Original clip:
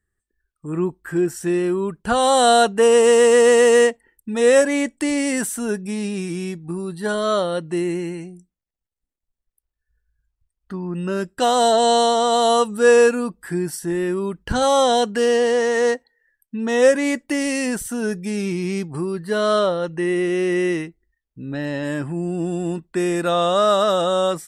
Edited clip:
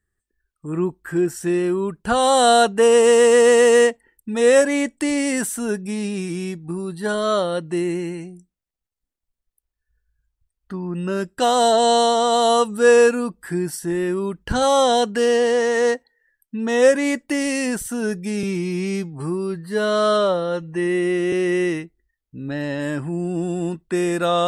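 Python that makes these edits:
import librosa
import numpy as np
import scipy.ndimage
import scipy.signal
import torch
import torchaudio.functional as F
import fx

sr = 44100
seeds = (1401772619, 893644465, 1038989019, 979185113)

y = fx.edit(x, sr, fx.stretch_span(start_s=18.43, length_s=1.93, factor=1.5), tone=tone)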